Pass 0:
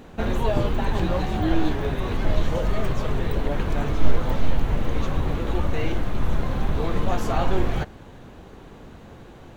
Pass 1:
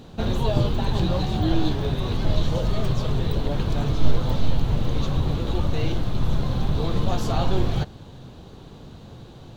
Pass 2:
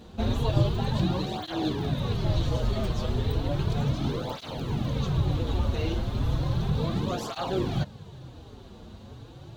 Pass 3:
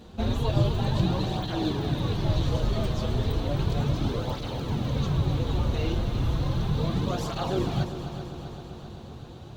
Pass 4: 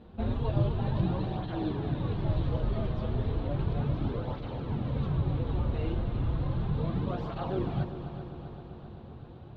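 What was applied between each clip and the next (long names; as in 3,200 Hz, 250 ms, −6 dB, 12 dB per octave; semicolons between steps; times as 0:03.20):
octave-band graphic EQ 125/2,000/4,000 Hz +8/−7/+10 dB; level −1.5 dB
through-zero flanger with one copy inverted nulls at 0.34 Hz, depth 7.5 ms
echo machine with several playback heads 130 ms, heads second and third, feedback 67%, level −12 dB
high-frequency loss of the air 400 metres; level −3.5 dB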